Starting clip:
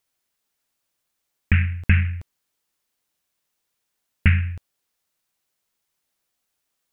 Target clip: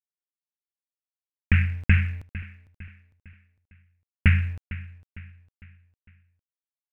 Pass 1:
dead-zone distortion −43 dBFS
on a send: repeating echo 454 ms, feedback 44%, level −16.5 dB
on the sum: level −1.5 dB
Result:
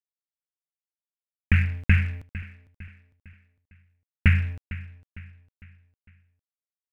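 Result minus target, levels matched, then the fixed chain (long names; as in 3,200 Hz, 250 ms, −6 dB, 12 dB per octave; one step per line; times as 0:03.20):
dead-zone distortion: distortion +8 dB
dead-zone distortion −51 dBFS
on a send: repeating echo 454 ms, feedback 44%, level −16.5 dB
on the sum: level −1.5 dB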